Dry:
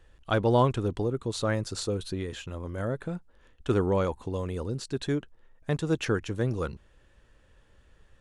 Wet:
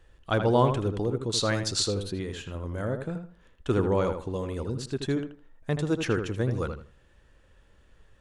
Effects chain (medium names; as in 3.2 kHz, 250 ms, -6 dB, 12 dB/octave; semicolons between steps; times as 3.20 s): 1.32–1.91 s: peaking EQ 5 kHz +10 dB 2 oct; on a send: filtered feedback delay 80 ms, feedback 25%, low-pass 2.9 kHz, level -7 dB